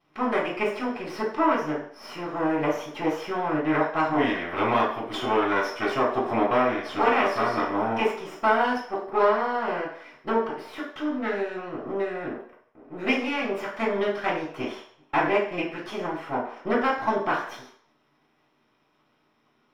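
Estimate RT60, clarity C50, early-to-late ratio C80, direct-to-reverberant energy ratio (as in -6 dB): 0.60 s, 4.0 dB, 8.5 dB, -15.5 dB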